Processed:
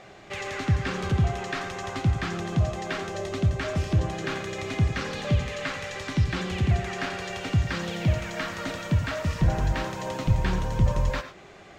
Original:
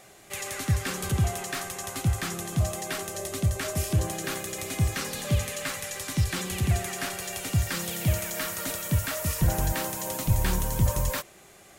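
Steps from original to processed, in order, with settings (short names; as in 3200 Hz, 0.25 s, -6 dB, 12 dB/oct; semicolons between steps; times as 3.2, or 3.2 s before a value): in parallel at +1 dB: compressor, threshold -35 dBFS, peak gain reduction 16.5 dB; on the sum: air absorption 180 m; non-linear reverb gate 0.13 s rising, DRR 10.5 dB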